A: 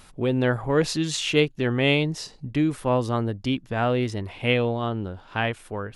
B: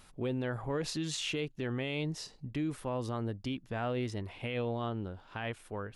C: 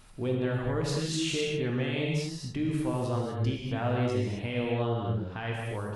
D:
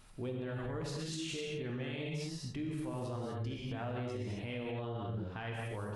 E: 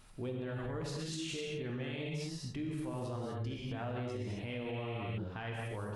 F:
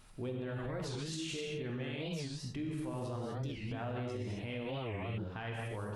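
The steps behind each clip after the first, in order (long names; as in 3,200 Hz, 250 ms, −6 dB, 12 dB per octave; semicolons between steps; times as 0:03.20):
brickwall limiter −18 dBFS, peak gain reduction 10.5 dB; level −8 dB
low-shelf EQ 220 Hz +3.5 dB; reverb whose tail is shaped and stops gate 280 ms flat, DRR −2 dB
brickwall limiter −27 dBFS, peak gain reduction 9.5 dB; level −4.5 dB
healed spectral selection 0:04.76–0:05.15, 1,700–9,900 Hz before
wow of a warped record 45 rpm, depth 250 cents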